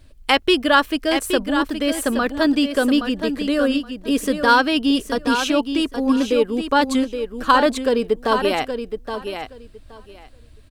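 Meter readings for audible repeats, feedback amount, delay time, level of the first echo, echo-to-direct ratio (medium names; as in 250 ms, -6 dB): 2, 17%, 821 ms, -8.0 dB, -8.0 dB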